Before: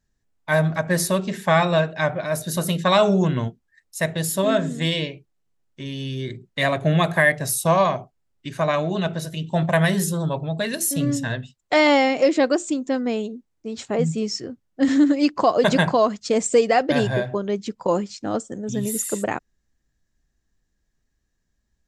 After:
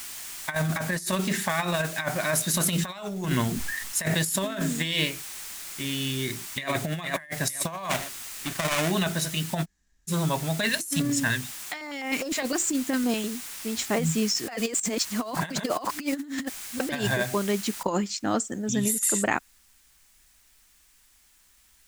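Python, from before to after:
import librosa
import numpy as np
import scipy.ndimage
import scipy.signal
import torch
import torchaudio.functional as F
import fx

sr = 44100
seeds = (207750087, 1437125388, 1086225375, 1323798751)

y = fx.over_compress(x, sr, threshold_db=-20.0, ratio=-0.5, at=(0.55, 1.85))
y = fx.sustainer(y, sr, db_per_s=48.0, at=(2.66, 4.6))
y = fx.echo_throw(y, sr, start_s=6.1, length_s=0.6, ms=460, feedback_pct=40, wet_db=-3.0)
y = fx.dead_time(y, sr, dead_ms=0.27, at=(7.89, 8.9), fade=0.02)
y = fx.filter_held_notch(y, sr, hz=9.8, low_hz=320.0, high_hz=4500.0, at=(10.69, 13.26))
y = fx.noise_floor_step(y, sr, seeds[0], at_s=17.83, before_db=-44, after_db=-66, tilt_db=0.0)
y = fx.edit(y, sr, fx.room_tone_fill(start_s=9.63, length_s=0.47, crossfade_s=0.06),
    fx.reverse_span(start_s=14.48, length_s=2.32), tone=tone)
y = fx.graphic_eq(y, sr, hz=(125, 500, 2000, 8000), db=(-7, -8, 3, 5))
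y = fx.over_compress(y, sr, threshold_db=-26.0, ratio=-0.5)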